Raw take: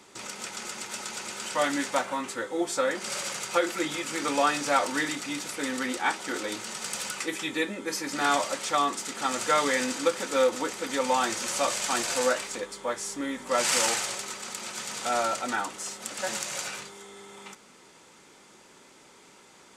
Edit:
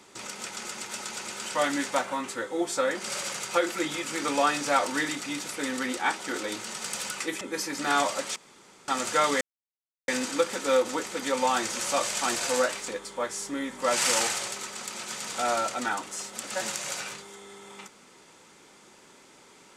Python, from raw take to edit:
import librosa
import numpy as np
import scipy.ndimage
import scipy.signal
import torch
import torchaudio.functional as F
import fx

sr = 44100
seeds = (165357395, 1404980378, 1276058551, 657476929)

y = fx.edit(x, sr, fx.cut(start_s=7.41, length_s=0.34),
    fx.room_tone_fill(start_s=8.7, length_s=0.52),
    fx.insert_silence(at_s=9.75, length_s=0.67), tone=tone)